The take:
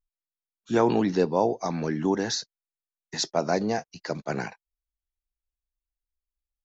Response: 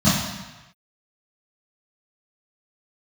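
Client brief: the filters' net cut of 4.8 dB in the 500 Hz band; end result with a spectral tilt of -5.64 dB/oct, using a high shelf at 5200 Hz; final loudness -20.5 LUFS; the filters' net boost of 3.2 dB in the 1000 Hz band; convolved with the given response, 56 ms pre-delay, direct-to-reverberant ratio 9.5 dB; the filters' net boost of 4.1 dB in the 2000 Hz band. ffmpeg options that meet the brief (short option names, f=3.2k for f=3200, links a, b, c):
-filter_complex "[0:a]equalizer=f=500:t=o:g=-8.5,equalizer=f=1k:t=o:g=7,equalizer=f=2k:t=o:g=4,highshelf=f=5.2k:g=-7,asplit=2[a][b];[1:a]atrim=start_sample=2205,adelay=56[c];[b][c]afir=irnorm=-1:irlink=0,volume=-29dB[d];[a][d]amix=inputs=2:normalize=0,volume=4.5dB"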